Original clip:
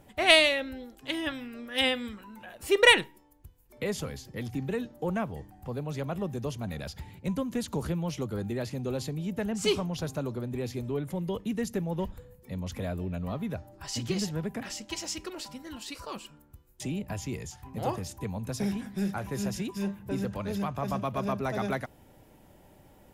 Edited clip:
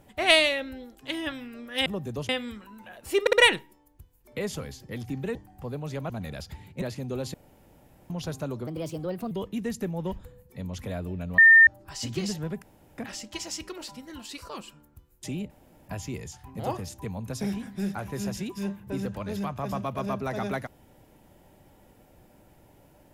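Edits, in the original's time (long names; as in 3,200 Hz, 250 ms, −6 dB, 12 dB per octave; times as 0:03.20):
0:02.78: stutter 0.06 s, 3 plays
0:04.80–0:05.39: remove
0:06.14–0:06.57: move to 0:01.86
0:07.29–0:08.57: remove
0:09.09–0:09.85: fill with room tone
0:10.42–0:11.24: play speed 128%
0:13.31–0:13.60: beep over 1,810 Hz −10.5 dBFS
0:14.55: splice in room tone 0.36 s
0:17.07: splice in room tone 0.38 s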